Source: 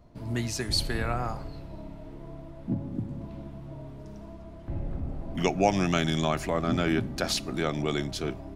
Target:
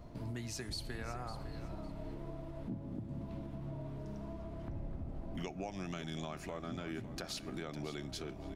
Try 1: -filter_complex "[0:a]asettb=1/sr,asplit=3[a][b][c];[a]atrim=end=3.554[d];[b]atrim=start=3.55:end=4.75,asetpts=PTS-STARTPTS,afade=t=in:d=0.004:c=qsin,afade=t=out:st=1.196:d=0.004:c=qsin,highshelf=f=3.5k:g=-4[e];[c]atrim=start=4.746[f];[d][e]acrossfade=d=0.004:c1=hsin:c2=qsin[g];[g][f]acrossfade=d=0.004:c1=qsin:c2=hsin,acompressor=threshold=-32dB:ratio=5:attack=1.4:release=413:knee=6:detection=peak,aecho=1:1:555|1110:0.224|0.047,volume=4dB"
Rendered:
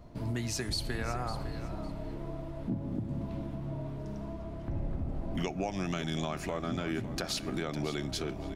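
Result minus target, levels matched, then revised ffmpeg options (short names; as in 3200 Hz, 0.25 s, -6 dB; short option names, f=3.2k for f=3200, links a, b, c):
compressor: peak gain reduction -8 dB
-filter_complex "[0:a]asettb=1/sr,asplit=3[a][b][c];[a]atrim=end=3.554[d];[b]atrim=start=3.55:end=4.75,asetpts=PTS-STARTPTS,afade=t=in:d=0.004:c=qsin,afade=t=out:st=1.196:d=0.004:c=qsin,highshelf=f=3.5k:g=-4[e];[c]atrim=start=4.746[f];[d][e]acrossfade=d=0.004:c1=hsin:c2=qsin[g];[g][f]acrossfade=d=0.004:c1=qsin:c2=hsin,acompressor=threshold=-42dB:ratio=5:attack=1.4:release=413:knee=6:detection=peak,aecho=1:1:555|1110:0.224|0.047,volume=4dB"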